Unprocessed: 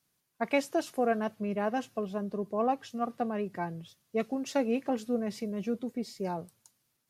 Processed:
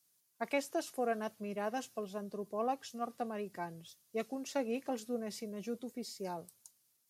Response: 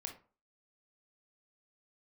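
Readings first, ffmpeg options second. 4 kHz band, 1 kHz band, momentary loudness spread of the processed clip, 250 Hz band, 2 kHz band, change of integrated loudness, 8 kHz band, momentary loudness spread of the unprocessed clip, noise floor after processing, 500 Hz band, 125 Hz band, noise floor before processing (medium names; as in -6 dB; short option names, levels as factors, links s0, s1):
-3.0 dB, -6.0 dB, 8 LU, -8.5 dB, -6.0 dB, -7.0 dB, -0.5 dB, 7 LU, -75 dBFS, -6.5 dB, -9.5 dB, -78 dBFS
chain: -filter_complex "[0:a]acrossover=split=730|3000[s0][s1][s2];[s2]alimiter=level_in=5.96:limit=0.0631:level=0:latency=1:release=428,volume=0.168[s3];[s0][s1][s3]amix=inputs=3:normalize=0,bass=f=250:g=-5,treble=f=4000:g=11,volume=0.501"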